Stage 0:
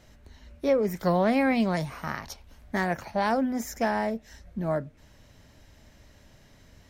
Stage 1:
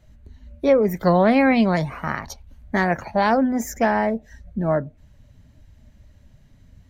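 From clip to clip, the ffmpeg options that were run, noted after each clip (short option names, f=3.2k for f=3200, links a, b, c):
-af "afftdn=nr=14:nf=-47,bandreject=f=5.3k:w=9.1,volume=7dB"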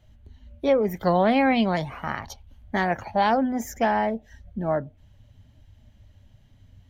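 -af "equalizer=f=100:t=o:w=0.33:g=8,equalizer=f=160:t=o:w=0.33:g=-3,equalizer=f=800:t=o:w=0.33:g=5,equalizer=f=3.15k:t=o:w=0.33:g=9,equalizer=f=8k:t=o:w=0.33:g=-3,volume=-4.5dB"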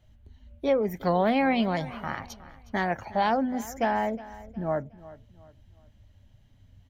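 -af "aecho=1:1:363|726|1089:0.126|0.0453|0.0163,volume=-3.5dB"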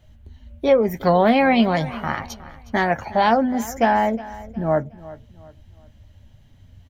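-filter_complex "[0:a]asplit=2[a][b];[b]adelay=13,volume=-11.5dB[c];[a][c]amix=inputs=2:normalize=0,volume=7.5dB"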